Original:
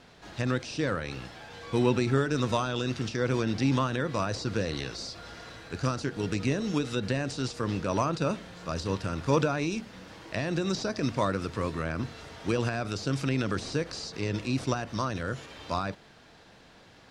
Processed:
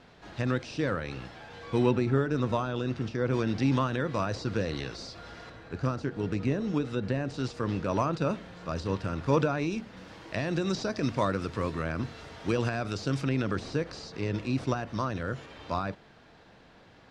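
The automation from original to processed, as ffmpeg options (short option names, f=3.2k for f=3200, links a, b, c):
-af "asetnsamples=n=441:p=0,asendcmd='1.91 lowpass f 1400;3.33 lowpass f 3400;5.5 lowpass f 1400;7.34 lowpass f 2800;9.97 lowpass f 5600;13.21 lowpass f 2600',lowpass=f=3.3k:p=1"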